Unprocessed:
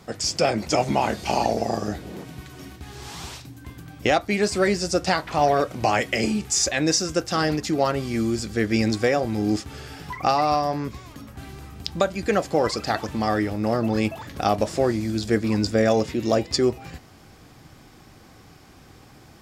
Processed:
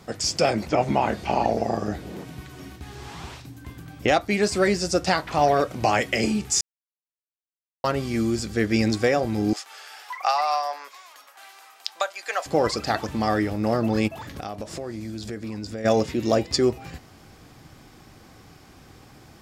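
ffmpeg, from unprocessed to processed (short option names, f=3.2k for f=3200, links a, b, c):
-filter_complex "[0:a]asettb=1/sr,asplit=3[a][b][c];[a]atrim=end=0.664[d];[b]atrim=start=0.66:end=4.08,asetpts=PTS-STARTPTS,afade=t=in:d=0.004:c=qsin,afade=t=out:st=3.416:d=0.004:c=qsin,acrossover=split=3000[e][f];[f]acompressor=threshold=-48dB:ratio=4:attack=1:release=60[g];[e][g]amix=inputs=2:normalize=0[h];[c]atrim=start=4.076[i];[d][h]acrossfade=d=0.004:c1=hsin:c2=qsin[j];[j][i]acrossfade=d=0.004:c1=qsin:c2=hsin,asettb=1/sr,asplit=3[k][l][m];[k]atrim=end=9.534[n];[l]atrim=start=9.53:end=12.46,asetpts=PTS-STARTPTS,afade=t=in:d=0.004:c=qsin,afade=t=out:st=2.926:d=0.004:c=qsin,highpass=f=700:w=0.5412,highpass=f=700:w=1.3066[o];[m]atrim=start=12.456[p];[n][o]acrossfade=d=0.004:c1=hsin:c2=qsin[q];[q][p]acrossfade=d=0.004:c1=qsin:c2=hsin,asplit=3[r][s][t];[r]afade=t=out:st=14.07:d=0.02[u];[s]acompressor=threshold=-31dB:ratio=4:attack=3.2:release=140:knee=1:detection=peak,afade=t=in:st=14.07:d=0.02,afade=t=out:st=15.84:d=0.02[v];[t]afade=t=in:st=15.84:d=0.02[w];[u][v][w]amix=inputs=3:normalize=0,asplit=3[x][y][z];[x]atrim=end=6.61,asetpts=PTS-STARTPTS,afade=t=out:st=6.606:d=0.004:c=hsin[aa];[y]atrim=start=6.61:end=7.84,asetpts=PTS-STARTPTS,volume=0[ab];[z]atrim=start=7.84,asetpts=PTS-STARTPTS,afade=t=in:d=0.004:c=hsin[ac];[aa][ab][ac]concat=n=3:v=0:a=1"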